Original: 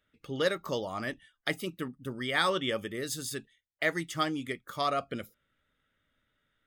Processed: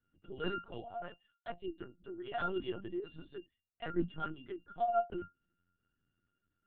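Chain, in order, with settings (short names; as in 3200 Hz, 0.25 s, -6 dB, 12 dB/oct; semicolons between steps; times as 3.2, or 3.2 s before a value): 0.65–3.02 HPF 500 Hz -> 140 Hz 12 dB/oct; octave resonator F, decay 0.14 s; LPC vocoder at 8 kHz pitch kept; gain +6.5 dB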